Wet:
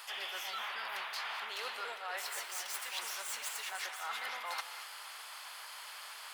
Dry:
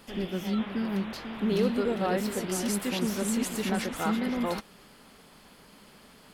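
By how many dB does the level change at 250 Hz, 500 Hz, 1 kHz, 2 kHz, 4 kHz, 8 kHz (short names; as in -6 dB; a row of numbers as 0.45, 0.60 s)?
under -40 dB, -20.5 dB, -5.0 dB, -1.0 dB, -1.0 dB, -5.0 dB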